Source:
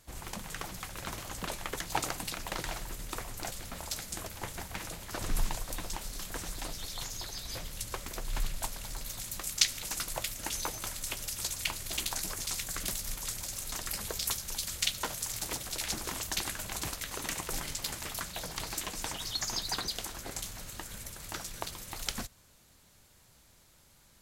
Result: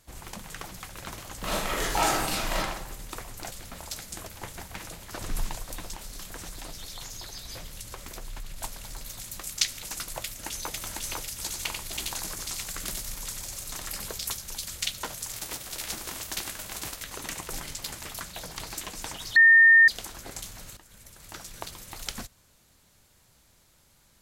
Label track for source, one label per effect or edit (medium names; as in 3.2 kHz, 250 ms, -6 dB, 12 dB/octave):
1.390000	2.570000	reverb throw, RT60 0.85 s, DRR -9 dB
5.930000	8.580000	compression, threshold -34 dBFS
10.230000	10.730000	echo throw 500 ms, feedback 50%, level -1.5 dB
11.320000	14.160000	delay 91 ms -5.5 dB
15.310000	17.010000	formants flattened exponent 0.6
19.360000	19.880000	bleep 1.82 kHz -12 dBFS
20.770000	21.640000	fade in, from -14 dB